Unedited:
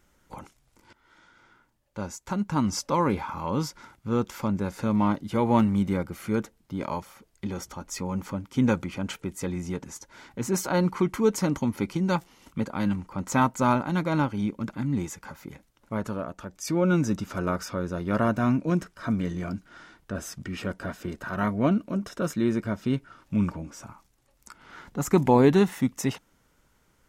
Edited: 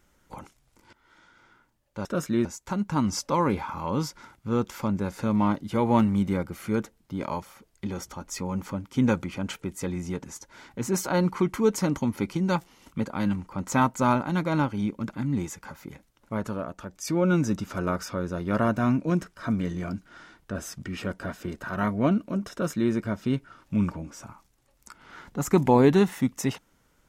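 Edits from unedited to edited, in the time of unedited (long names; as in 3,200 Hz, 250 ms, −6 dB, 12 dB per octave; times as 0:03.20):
0:22.12–0:22.52: duplicate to 0:02.05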